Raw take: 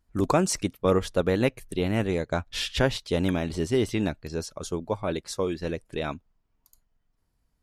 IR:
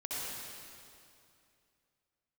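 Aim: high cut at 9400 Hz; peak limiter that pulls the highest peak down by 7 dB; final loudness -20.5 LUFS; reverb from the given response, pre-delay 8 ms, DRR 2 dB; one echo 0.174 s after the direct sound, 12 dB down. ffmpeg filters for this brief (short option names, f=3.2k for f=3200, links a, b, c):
-filter_complex "[0:a]lowpass=9.4k,alimiter=limit=-16.5dB:level=0:latency=1,aecho=1:1:174:0.251,asplit=2[a][b];[1:a]atrim=start_sample=2205,adelay=8[c];[b][c]afir=irnorm=-1:irlink=0,volume=-5.5dB[d];[a][d]amix=inputs=2:normalize=0,volume=6.5dB"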